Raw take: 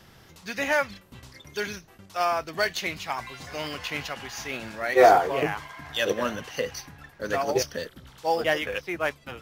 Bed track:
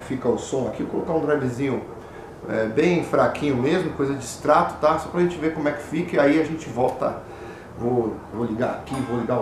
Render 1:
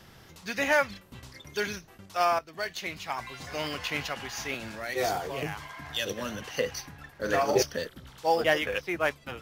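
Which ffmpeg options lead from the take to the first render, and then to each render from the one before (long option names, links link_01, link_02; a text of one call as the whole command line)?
ffmpeg -i in.wav -filter_complex "[0:a]asettb=1/sr,asplit=3[link_01][link_02][link_03];[link_01]atrim=end=4.544[link_04];[link_02]atrim=start=4.54:end=6.42,asetpts=PTS-STARTPTS,afade=type=in:duration=0.004:curve=qsin,afade=type=out:start_time=1.876:duration=0.004:curve=qsin,acrossover=split=190|3000[link_05][link_06][link_07];[link_06]acompressor=threshold=-39dB:ratio=2:attack=3.2:release=140:knee=2.83:detection=peak[link_08];[link_05][link_08][link_07]amix=inputs=3:normalize=0[link_09];[link_03]atrim=start=6.416[link_10];[link_04][link_09]acrossfade=duration=0.004:curve1=hsin:curve2=qsin[link_11];[link_11][link_10]acrossfade=duration=0.004:curve1=qsin:curve2=hsin,asettb=1/sr,asplit=3[link_12][link_13][link_14];[link_12]atrim=end=7.114[link_15];[link_13]atrim=start=7.11:end=7.62,asetpts=PTS-STARTPTS,afade=type=in:duration=0.004:curve=qsin,afade=type=out:start_time=0.506:duration=0.004:curve=qsin,asplit=2[link_16][link_17];[link_17]adelay=42,volume=-6.5dB[link_18];[link_16][link_18]amix=inputs=2:normalize=0,atrim=end_sample=22491[link_19];[link_14]atrim=start=7.616[link_20];[link_15][link_19]acrossfade=duration=0.004:curve1=hsin:curve2=qsin[link_21];[link_21][link_20]acrossfade=duration=0.004:curve1=qsin:curve2=hsin,asplit=2[link_22][link_23];[link_22]atrim=end=2.39,asetpts=PTS-STARTPTS,afade=type=out:start_time=2.386:duration=0.004:curve=hsin:silence=0.223872[link_24];[link_23]atrim=start=2.39,asetpts=PTS-STARTPTS,afade=type=in:duration=1.14:silence=0.223872[link_25];[link_24][link_25]concat=n=2:v=0:a=1" out.wav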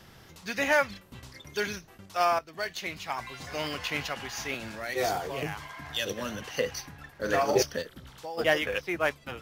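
ffmpeg -i in.wav -filter_complex "[0:a]asplit=3[link_01][link_02][link_03];[link_01]afade=type=out:start_time=7.81:duration=0.02[link_04];[link_02]acompressor=threshold=-37dB:ratio=4:attack=3.2:release=140:knee=1:detection=peak,afade=type=in:start_time=7.81:duration=0.02,afade=type=out:start_time=8.37:duration=0.02[link_05];[link_03]afade=type=in:start_time=8.37:duration=0.02[link_06];[link_04][link_05][link_06]amix=inputs=3:normalize=0" out.wav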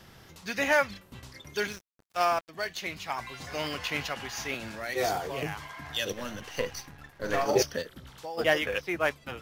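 ffmpeg -i in.wav -filter_complex "[0:a]asettb=1/sr,asplit=3[link_01][link_02][link_03];[link_01]atrim=end=1.674[link_04];[link_02]atrim=start=1.67:end=2.49,asetpts=PTS-STARTPTS,afade=type=in:duration=0.004:curve=qsin,afade=type=out:start_time=0.816:duration=0.004:curve=qsin,aeval=exprs='sgn(val(0))*max(abs(val(0))-0.00794,0)':channel_layout=same[link_05];[link_03]atrim=start=2.486[link_06];[link_04][link_05]acrossfade=duration=0.004:curve1=hsin:curve2=qsin[link_07];[link_07][link_06]acrossfade=duration=0.004:curve1=qsin:curve2=hsin,asettb=1/sr,asplit=3[link_08][link_09][link_10];[link_08]atrim=end=6.124[link_11];[link_09]atrim=start=6.12:end=7.46,asetpts=PTS-STARTPTS,afade=type=in:duration=0.004:curve=qsin,afade=type=out:start_time=1.336:duration=0.004:curve=qsin,aeval=exprs='if(lt(val(0),0),0.447*val(0),val(0))':channel_layout=same[link_12];[link_10]atrim=start=7.456[link_13];[link_11][link_12]acrossfade=duration=0.004:curve1=hsin:curve2=qsin[link_14];[link_14][link_13]acrossfade=duration=0.004:curve1=qsin:curve2=hsin" out.wav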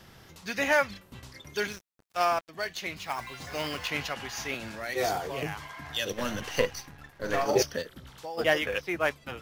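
ffmpeg -i in.wav -filter_complex "[0:a]asettb=1/sr,asplit=3[link_01][link_02][link_03];[link_01]atrim=end=2.974[link_04];[link_02]atrim=start=2.97:end=3.88,asetpts=PTS-STARTPTS,afade=type=in:duration=0.004:curve=qsin,afade=type=out:start_time=0.906:duration=0.004:curve=qsin,acrusher=bits=4:mode=log:mix=0:aa=0.000001[link_05];[link_03]atrim=start=3.876[link_06];[link_04][link_05]acrossfade=duration=0.004:curve1=hsin:curve2=qsin[link_07];[link_07][link_06]acrossfade=duration=0.004:curve1=qsin:curve2=hsin,asettb=1/sr,asplit=3[link_08][link_09][link_10];[link_08]atrim=end=6.184[link_11];[link_09]atrim=start=6.18:end=6.66,asetpts=PTS-STARTPTS,afade=type=in:duration=0.004:curve=qsin,afade=type=out:start_time=0.476:duration=0.004:curve=qsin,acontrast=38[link_12];[link_10]atrim=start=6.656[link_13];[link_11][link_12]acrossfade=duration=0.004:curve1=hsin:curve2=qsin[link_14];[link_14][link_13]acrossfade=duration=0.004:curve1=qsin:curve2=hsin" out.wav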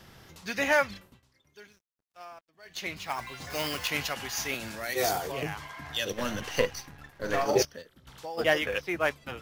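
ffmpeg -i in.wav -filter_complex "[0:a]asettb=1/sr,asplit=3[link_01][link_02][link_03];[link_01]atrim=end=3.504[link_04];[link_02]atrim=start=3.5:end=5.32,asetpts=PTS-STARTPTS,afade=type=in:duration=0.004:curve=qsin,afade=type=out:start_time=1.816:duration=0.004:curve=qsin,highshelf=frequency=6300:gain=10.5[link_05];[link_03]atrim=start=5.316[link_06];[link_04][link_05]acrossfade=duration=0.004:curve1=hsin:curve2=qsin[link_07];[link_07][link_06]acrossfade=duration=0.004:curve1=qsin:curve2=hsin,asplit=5[link_08][link_09][link_10][link_11][link_12];[link_08]atrim=end=1.22,asetpts=PTS-STARTPTS,afade=type=out:start_time=1.05:duration=0.17:curve=qua:silence=0.0944061[link_13];[link_09]atrim=start=1.22:end=2.61,asetpts=PTS-STARTPTS,volume=-20.5dB[link_14];[link_10]atrim=start=2.61:end=7.652,asetpts=PTS-STARTPTS,afade=type=in:duration=0.17:curve=qua:silence=0.0944061[link_15];[link_11]atrim=start=7.648:end=8.072,asetpts=PTS-STARTPTS,volume=-11dB[link_16];[link_12]atrim=start=8.068[link_17];[link_13][link_14][link_15]concat=n=3:v=0:a=1[link_18];[link_18][link_16]acrossfade=duration=0.004:curve1=hsin:curve2=hsin[link_19];[link_19][link_17]acrossfade=duration=0.004:curve1=hsin:curve2=hsin" out.wav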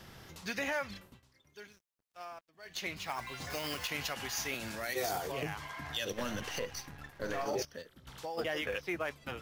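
ffmpeg -i in.wav -af "alimiter=limit=-20dB:level=0:latency=1:release=59,acompressor=threshold=-40dB:ratio=1.5" out.wav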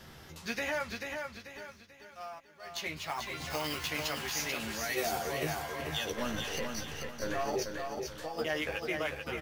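ffmpeg -i in.wav -filter_complex "[0:a]asplit=2[link_01][link_02];[link_02]adelay=13,volume=-5dB[link_03];[link_01][link_03]amix=inputs=2:normalize=0,asplit=2[link_04][link_05];[link_05]aecho=0:1:439|878|1317|1756|2195:0.562|0.208|0.077|0.0285|0.0105[link_06];[link_04][link_06]amix=inputs=2:normalize=0" out.wav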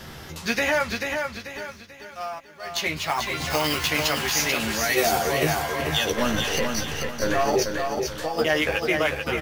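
ffmpeg -i in.wav -af "volume=11.5dB" out.wav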